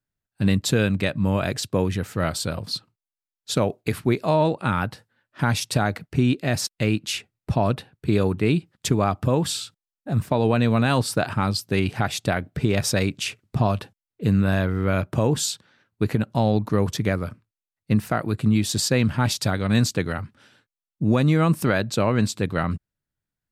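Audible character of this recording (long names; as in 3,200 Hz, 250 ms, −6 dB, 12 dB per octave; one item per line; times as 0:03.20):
background noise floor −92 dBFS
spectral slope −5.5 dB per octave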